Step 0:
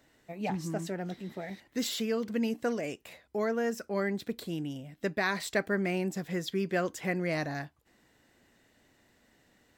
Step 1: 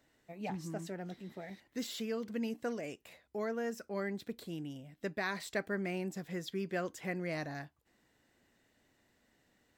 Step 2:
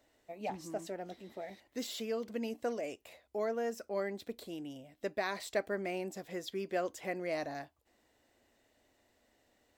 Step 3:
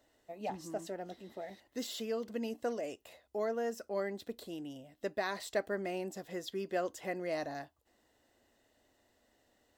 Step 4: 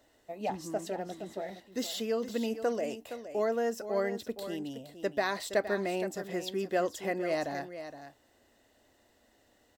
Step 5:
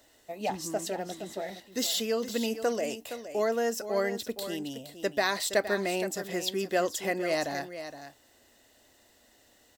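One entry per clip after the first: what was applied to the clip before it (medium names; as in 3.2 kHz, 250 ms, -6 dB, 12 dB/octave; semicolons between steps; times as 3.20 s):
de-esser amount 70%; trim -6.5 dB
fifteen-band graphic EQ 160 Hz -12 dB, 630 Hz +5 dB, 1.6 kHz -4 dB; trim +1 dB
band-stop 2.3 kHz, Q 7.8
delay 467 ms -11 dB; trim +5 dB
treble shelf 2.5 kHz +9 dB; trim +1.5 dB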